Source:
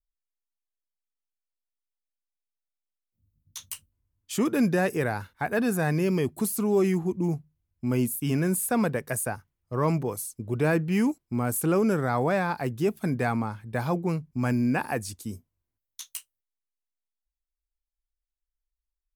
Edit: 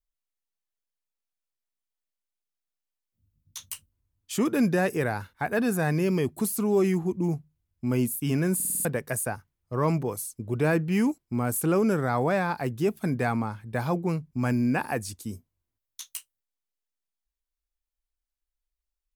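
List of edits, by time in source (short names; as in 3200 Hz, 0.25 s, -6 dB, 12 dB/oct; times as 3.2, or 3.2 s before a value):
8.55 stutter in place 0.05 s, 6 plays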